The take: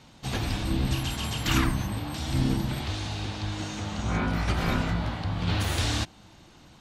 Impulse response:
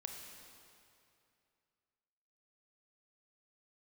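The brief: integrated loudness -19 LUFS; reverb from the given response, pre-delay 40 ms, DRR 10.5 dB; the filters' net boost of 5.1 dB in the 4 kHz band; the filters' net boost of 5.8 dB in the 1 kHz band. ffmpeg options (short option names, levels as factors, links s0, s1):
-filter_complex "[0:a]equalizer=f=1000:t=o:g=7,equalizer=f=4000:t=o:g=6,asplit=2[s0][s1];[1:a]atrim=start_sample=2205,adelay=40[s2];[s1][s2]afir=irnorm=-1:irlink=0,volume=0.398[s3];[s0][s3]amix=inputs=2:normalize=0,volume=2.37"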